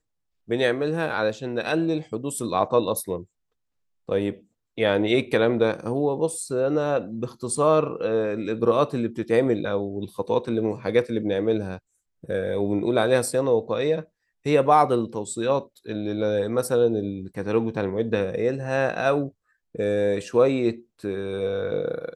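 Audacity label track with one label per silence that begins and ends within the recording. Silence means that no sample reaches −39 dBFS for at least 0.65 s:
3.240000	4.090000	silence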